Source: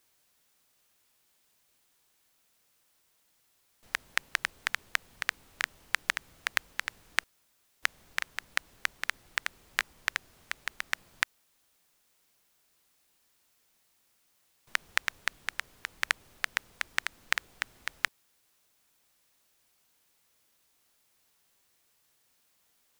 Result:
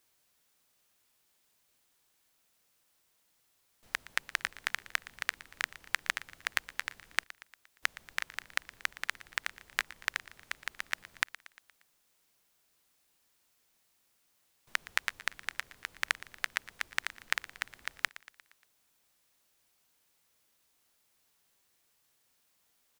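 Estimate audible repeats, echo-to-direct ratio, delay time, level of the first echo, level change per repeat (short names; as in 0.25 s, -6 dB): 4, -16.5 dB, 0.117 s, -18.0 dB, -5.5 dB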